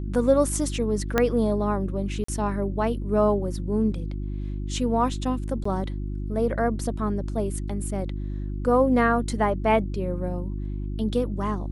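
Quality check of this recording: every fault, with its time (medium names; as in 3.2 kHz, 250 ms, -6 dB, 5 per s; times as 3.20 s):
hum 50 Hz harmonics 7 -30 dBFS
1.18 s: pop -7 dBFS
2.24–2.28 s: dropout 44 ms
5.64–5.65 s: dropout 14 ms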